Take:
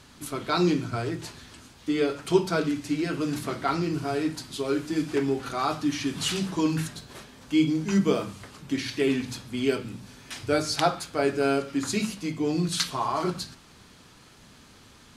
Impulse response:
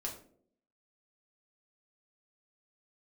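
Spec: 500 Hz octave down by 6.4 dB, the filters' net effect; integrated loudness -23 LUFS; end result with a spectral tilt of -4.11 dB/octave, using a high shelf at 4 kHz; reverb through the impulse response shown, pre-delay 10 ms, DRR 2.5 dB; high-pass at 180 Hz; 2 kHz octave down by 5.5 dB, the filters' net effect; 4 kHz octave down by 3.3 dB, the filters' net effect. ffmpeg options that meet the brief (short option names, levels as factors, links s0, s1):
-filter_complex "[0:a]highpass=180,equalizer=f=500:t=o:g=-8.5,equalizer=f=2000:t=o:g=-7,highshelf=f=4000:g=7,equalizer=f=4000:t=o:g=-6.5,asplit=2[s0][s1];[1:a]atrim=start_sample=2205,adelay=10[s2];[s1][s2]afir=irnorm=-1:irlink=0,volume=0.75[s3];[s0][s3]amix=inputs=2:normalize=0,volume=1.88"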